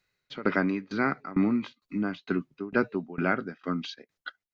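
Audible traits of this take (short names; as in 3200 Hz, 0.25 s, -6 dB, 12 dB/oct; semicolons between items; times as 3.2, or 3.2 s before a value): tremolo saw down 2.2 Hz, depth 95%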